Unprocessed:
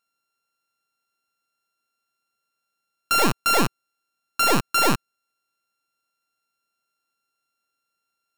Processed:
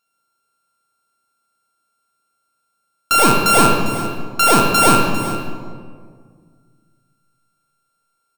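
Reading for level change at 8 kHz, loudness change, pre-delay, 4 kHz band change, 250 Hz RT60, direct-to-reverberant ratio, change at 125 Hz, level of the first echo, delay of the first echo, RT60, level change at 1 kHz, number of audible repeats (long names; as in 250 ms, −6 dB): +9.0 dB, +6.5 dB, 24 ms, +5.5 dB, 2.4 s, 0.5 dB, +9.5 dB, −13.5 dB, 399 ms, 1.9 s, +9.0 dB, 1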